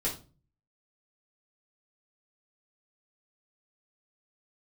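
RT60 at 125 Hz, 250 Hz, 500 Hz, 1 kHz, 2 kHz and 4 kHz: 0.70, 0.50, 0.40, 0.30, 0.25, 0.30 s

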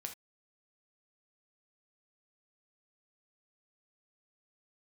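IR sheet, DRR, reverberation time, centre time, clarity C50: 3.5 dB, not exponential, 11 ms, 10.0 dB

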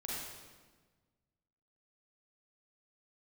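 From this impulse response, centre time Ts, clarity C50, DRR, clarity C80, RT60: 0.101 s, -3.5 dB, -6.0 dB, 0.0 dB, 1.4 s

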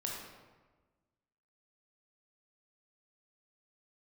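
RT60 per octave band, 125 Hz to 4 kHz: 1.6, 1.6, 1.4, 1.3, 1.1, 0.80 s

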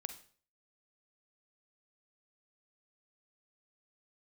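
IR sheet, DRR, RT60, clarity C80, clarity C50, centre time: 9.0 dB, 0.45 s, 15.5 dB, 10.5 dB, 8 ms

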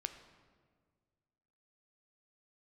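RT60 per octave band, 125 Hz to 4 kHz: 2.2, 2.0, 1.9, 1.6, 1.3, 1.0 s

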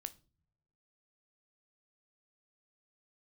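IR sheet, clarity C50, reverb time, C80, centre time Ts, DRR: 20.0 dB, not exponential, 26.5 dB, 3 ms, 11.0 dB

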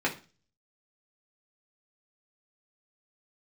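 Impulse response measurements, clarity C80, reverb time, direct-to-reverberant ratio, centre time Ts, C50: 19.0 dB, 0.35 s, -3.5 dB, 13 ms, 13.0 dB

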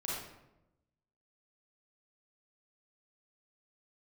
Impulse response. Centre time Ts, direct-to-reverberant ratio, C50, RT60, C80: 74 ms, -6.5 dB, -2.0 dB, 0.95 s, 2.5 dB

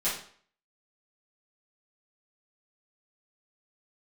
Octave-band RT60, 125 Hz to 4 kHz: 0.45, 0.50, 0.50, 0.50, 0.50, 0.45 s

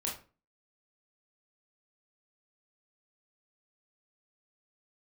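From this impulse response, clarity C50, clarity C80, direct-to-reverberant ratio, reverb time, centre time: 7.0 dB, 13.0 dB, -3.0 dB, 0.35 s, 30 ms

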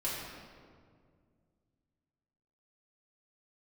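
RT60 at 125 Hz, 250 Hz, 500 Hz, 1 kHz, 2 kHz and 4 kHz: 3.1, 2.7, 2.3, 1.8, 1.4, 1.2 s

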